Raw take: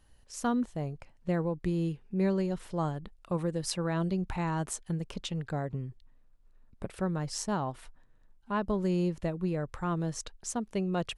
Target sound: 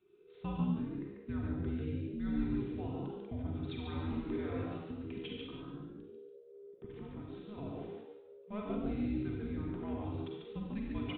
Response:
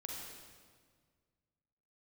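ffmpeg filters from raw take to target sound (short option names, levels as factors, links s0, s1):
-filter_complex "[0:a]equalizer=f=800:w=0.35:g=-6,aecho=1:1:3.6:0.49,asettb=1/sr,asplit=3[s0][s1][s2];[s0]atrim=end=5.264[s3];[s1]atrim=start=5.26:end=7.58,asetpts=PTS-STARTPTS,afade=t=in:d=0.004:c=qsin,afade=t=out:st=2.316:d=0.004:c=qsin,acompressor=threshold=0.0112:ratio=4[s4];[s2]atrim=start=7.576[s5];[s3][s4]acrossfade=d=0.004:c1=hsin:c2=qsin[s6];[s6][s5]acrossfade=d=0.004:c1=qsin:c2=hsin,afreqshift=-420,aresample=8000,aresample=44100,asplit=5[s7][s8][s9][s10][s11];[s8]adelay=143,afreqshift=68,volume=0.562[s12];[s9]adelay=286,afreqshift=136,volume=0.174[s13];[s10]adelay=429,afreqshift=204,volume=0.0543[s14];[s11]adelay=572,afreqshift=272,volume=0.0168[s15];[s7][s12][s13][s14][s15]amix=inputs=5:normalize=0[s16];[1:a]atrim=start_sample=2205,afade=t=out:st=0.26:d=0.01,atrim=end_sample=11907[s17];[s16][s17]afir=irnorm=-1:irlink=0,volume=0.794"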